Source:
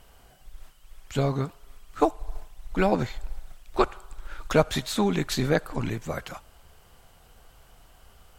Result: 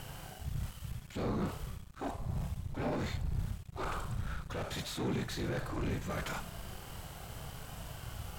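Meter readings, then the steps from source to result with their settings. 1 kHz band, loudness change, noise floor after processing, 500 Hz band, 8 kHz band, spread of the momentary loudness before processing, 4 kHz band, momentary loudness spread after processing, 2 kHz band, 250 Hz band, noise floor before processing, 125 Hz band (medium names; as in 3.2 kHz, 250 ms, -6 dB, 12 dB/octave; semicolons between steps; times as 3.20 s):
-11.5 dB, -12.5 dB, -50 dBFS, -14.0 dB, -8.0 dB, 20 LU, -8.5 dB, 10 LU, -9.0 dB, -10.0 dB, -56 dBFS, -5.5 dB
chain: reverse; compression 8:1, threshold -37 dBFS, peak gain reduction 21.5 dB; reverse; whisper effect; waveshaping leveller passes 3; harmonic-percussive split percussive -13 dB; trim +2 dB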